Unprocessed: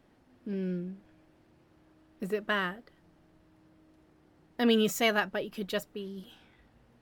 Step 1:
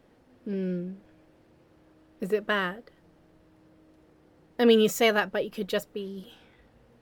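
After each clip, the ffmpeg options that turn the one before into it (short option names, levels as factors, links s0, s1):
-af "equalizer=f=490:w=4:g=7.5,volume=1.33"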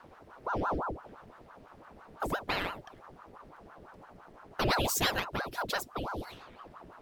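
-filter_complex "[0:a]lowshelf=f=150:g=10.5,acrossover=split=120|3000[s0][s1][s2];[s1]acompressor=threshold=0.01:ratio=2.5[s3];[s0][s3][s2]amix=inputs=3:normalize=0,aeval=exprs='val(0)*sin(2*PI*660*n/s+660*0.85/5.9*sin(2*PI*5.9*n/s))':c=same,volume=1.88"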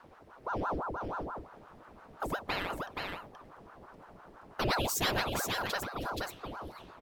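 -af "aecho=1:1:476:0.631,volume=0.794"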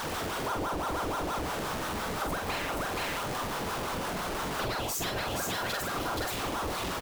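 -filter_complex "[0:a]aeval=exprs='val(0)+0.5*0.0335*sgn(val(0))':c=same,acompressor=threshold=0.0282:ratio=6,asplit=2[s0][s1];[s1]adelay=45,volume=0.596[s2];[s0][s2]amix=inputs=2:normalize=0"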